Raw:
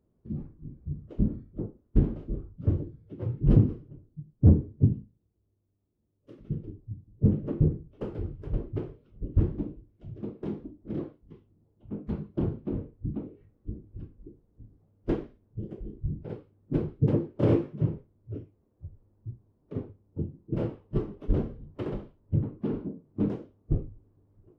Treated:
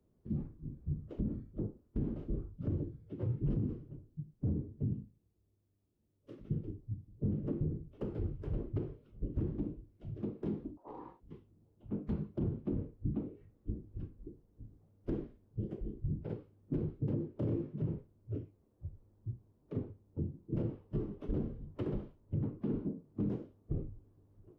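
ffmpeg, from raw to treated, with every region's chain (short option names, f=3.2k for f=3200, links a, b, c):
-filter_complex "[0:a]asettb=1/sr,asplit=3[a][b][c];[a]atrim=end=10.774[d];[b]atrim=start=10.77:end=11.2,asetpts=PTS-STARTPTS,afade=t=in:d=0.004:c=qsin,afade=t=out:st=0.426:d=0.004:c=qsin,acompressor=threshold=-38dB:ratio=6:attack=3.2:release=140:knee=1:detection=peak,aeval=exprs='val(0)*sin(2*PI*640*n/s)':c=same,asplit=2[e][f];[f]adelay=17,volume=-7dB[g];[e][g]amix=inputs=2:normalize=0,atrim=end_sample=18963[h];[c]atrim=start=11.196[i];[d][h]acrossfade=d=0.004:c1=hsin:c2=qsin[j];[j][i]acrossfade=d=0.004:c1=qsin:c2=hsin,acrossover=split=140|400[k][l][m];[k]acompressor=threshold=-29dB:ratio=4[n];[l]acompressor=threshold=-28dB:ratio=4[o];[m]acompressor=threshold=-46dB:ratio=4[p];[n][o][p]amix=inputs=3:normalize=0,alimiter=level_in=0.5dB:limit=-24dB:level=0:latency=1:release=46,volume=-0.5dB,volume=-1.5dB"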